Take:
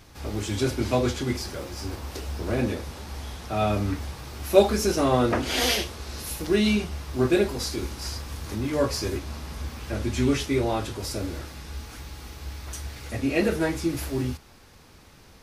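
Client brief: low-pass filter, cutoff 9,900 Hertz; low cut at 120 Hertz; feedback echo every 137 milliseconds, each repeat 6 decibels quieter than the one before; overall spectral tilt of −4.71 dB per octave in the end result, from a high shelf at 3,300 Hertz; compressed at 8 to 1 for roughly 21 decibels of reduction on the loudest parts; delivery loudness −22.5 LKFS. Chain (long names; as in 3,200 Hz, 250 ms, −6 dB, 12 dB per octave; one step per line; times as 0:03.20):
high-pass filter 120 Hz
low-pass filter 9,900 Hz
high-shelf EQ 3,300 Hz −5 dB
downward compressor 8 to 1, threshold −33 dBFS
repeating echo 137 ms, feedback 50%, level −6 dB
level +14.5 dB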